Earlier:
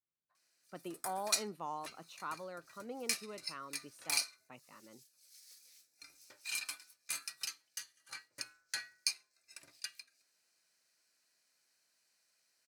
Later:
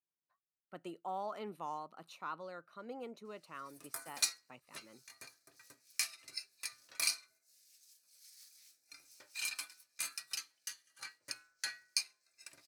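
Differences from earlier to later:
background: entry +2.90 s; master: add low shelf 370 Hz -2.5 dB

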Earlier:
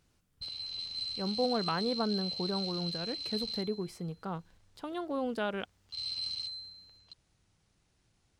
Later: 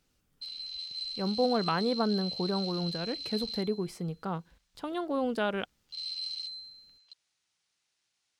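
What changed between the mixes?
speech +3.5 dB; background: add band-pass 4600 Hz, Q 0.54

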